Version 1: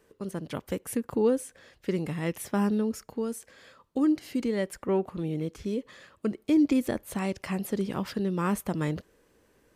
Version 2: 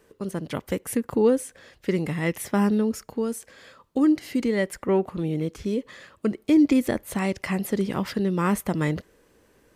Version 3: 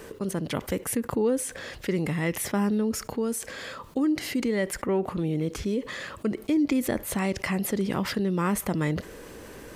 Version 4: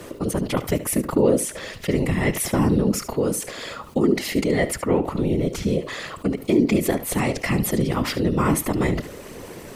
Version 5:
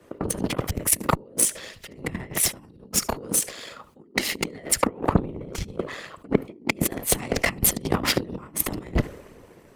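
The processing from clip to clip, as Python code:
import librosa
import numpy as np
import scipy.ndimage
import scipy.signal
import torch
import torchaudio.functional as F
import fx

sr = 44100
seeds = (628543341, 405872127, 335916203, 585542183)

y1 = fx.dynamic_eq(x, sr, hz=2000.0, q=8.0, threshold_db=-60.0, ratio=4.0, max_db=6)
y1 = y1 * librosa.db_to_amplitude(4.5)
y2 = fx.env_flatten(y1, sr, amount_pct=50)
y2 = y2 * librosa.db_to_amplitude(-6.5)
y3 = fx.notch(y2, sr, hz=1600.0, q=6.8)
y3 = fx.whisperise(y3, sr, seeds[0])
y3 = y3 + 10.0 ** (-14.5 / 20.0) * np.pad(y3, (int(73 * sr / 1000.0), 0))[:len(y3)]
y3 = y3 * librosa.db_to_amplitude(5.5)
y4 = fx.over_compress(y3, sr, threshold_db=-25.0, ratio=-0.5)
y4 = fx.cheby_harmonics(y4, sr, harmonics=(7,), levels_db=(-20,), full_scale_db=-6.0)
y4 = fx.band_widen(y4, sr, depth_pct=70)
y4 = y4 * librosa.db_to_amplitude(3.0)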